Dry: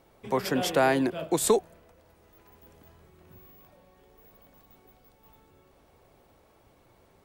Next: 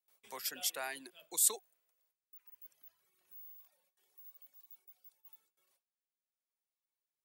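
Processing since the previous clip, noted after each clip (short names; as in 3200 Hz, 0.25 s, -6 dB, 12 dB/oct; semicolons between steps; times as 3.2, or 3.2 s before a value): gate with hold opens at -49 dBFS; reverb removal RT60 1.9 s; differentiator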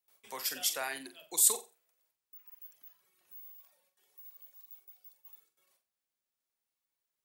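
flutter echo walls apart 7.7 m, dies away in 0.28 s; gain +4 dB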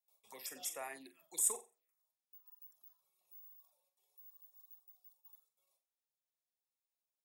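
notch comb 1500 Hz; envelope phaser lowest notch 270 Hz, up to 4300 Hz, full sweep at -33.5 dBFS; added harmonics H 8 -41 dB, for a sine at -12 dBFS; gain -6 dB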